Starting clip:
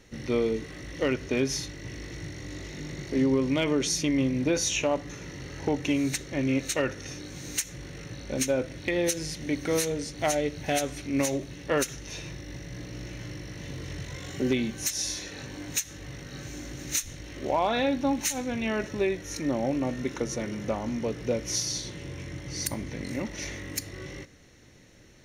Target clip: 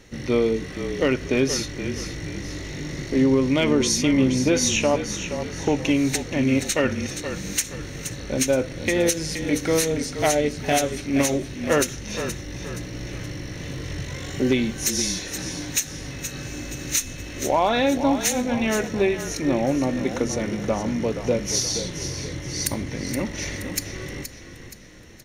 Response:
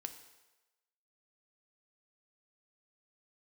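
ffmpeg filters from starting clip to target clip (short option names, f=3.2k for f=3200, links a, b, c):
-filter_complex "[0:a]asplit=6[a][b][c][d][e][f];[b]adelay=473,afreqshift=-34,volume=-9.5dB[g];[c]adelay=946,afreqshift=-68,volume=-16.8dB[h];[d]adelay=1419,afreqshift=-102,volume=-24.2dB[i];[e]adelay=1892,afreqshift=-136,volume=-31.5dB[j];[f]adelay=2365,afreqshift=-170,volume=-38.8dB[k];[a][g][h][i][j][k]amix=inputs=6:normalize=0,asettb=1/sr,asplit=3[l][m][n];[l]atrim=end=16.114[o];[m]atrim=start=16.11:end=17.41,asetpts=PTS-STARTPTS,afade=t=in:d=0.004:c=qsin,afade=t=out:st=1.296:d=0.004:c=qsin,aeval=exprs='val(0)+0.00282*sin(2*PI*2600*n/s)':c=same[p];[n]atrim=start=17.406[q];[o][p]acrossfade=d=0.004:c1=hsin:c2=qsin[r];[r][q]acrossfade=d=0.004:c1=qsin:c2=hsin,volume=5.5dB"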